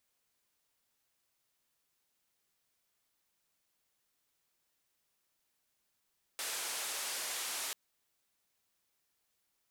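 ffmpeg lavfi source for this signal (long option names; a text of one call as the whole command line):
ffmpeg -f lavfi -i "anoisesrc=color=white:duration=1.34:sample_rate=44100:seed=1,highpass=frequency=480,lowpass=frequency=11000,volume=-31dB" out.wav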